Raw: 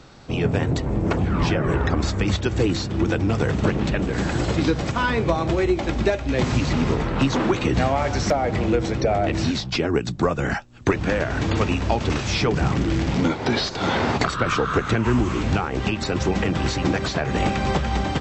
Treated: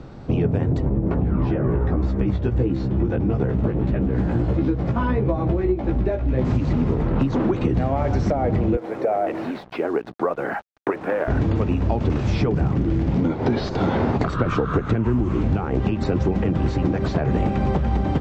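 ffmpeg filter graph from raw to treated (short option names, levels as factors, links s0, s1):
-filter_complex "[0:a]asettb=1/sr,asplit=3[s0][s1][s2];[s0]atrim=end=0.894[s3];[s1]atrim=start=0.89:end=6.45,asetpts=PTS-STARTPTS,afade=t=in:d=0.004:c=qsin,afade=t=out:st=5.556:d=0.004:c=qsin,flanger=delay=15:depth=2.1:speed=1.6,lowpass=f=3100:p=1[s4];[s2]atrim=start=6.446[s5];[s3][s4]acrossfade=d=0.004:c1=hsin:c2=qsin[s6];[s6][s5]acrossfade=d=0.004:c1=qsin:c2=hsin,asettb=1/sr,asplit=3[s7][s8][s9];[s7]atrim=end=8.774[s10];[s8]atrim=start=8.77:end=11.28,asetpts=PTS-STARTPTS,afade=t=in:d=0.004:c=qsin,afade=t=out:st=2.506:d=0.004:c=qsin,highpass=550,lowpass=2100,acrusher=bits=6:mix=0:aa=0.5[s11];[s9]atrim=start=11.276[s12];[s10][s11]acrossfade=d=0.004:c1=hsin:c2=qsin[s13];[s13][s12]acrossfade=d=0.004:c1=qsin:c2=hsin,lowpass=f=3300:p=1,tiltshelf=f=910:g=7,acompressor=threshold=0.1:ratio=6,volume=1.41"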